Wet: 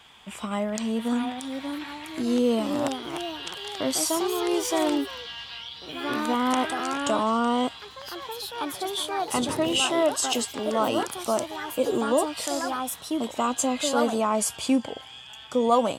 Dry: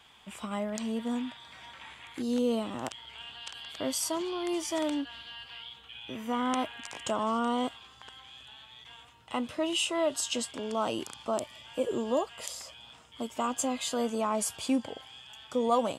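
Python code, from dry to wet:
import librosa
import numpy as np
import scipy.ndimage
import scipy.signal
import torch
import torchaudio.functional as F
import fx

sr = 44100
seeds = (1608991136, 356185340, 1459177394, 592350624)

y = fx.hum_notches(x, sr, base_hz=50, count=2)
y = fx.echo_pitch(y, sr, ms=755, semitones=3, count=3, db_per_echo=-6.0)
y = fx.dmg_noise_band(y, sr, seeds[0], low_hz=84.0, high_hz=510.0, level_db=-42.0, at=(9.33, 9.8), fade=0.02)
y = y * 10.0 ** (5.5 / 20.0)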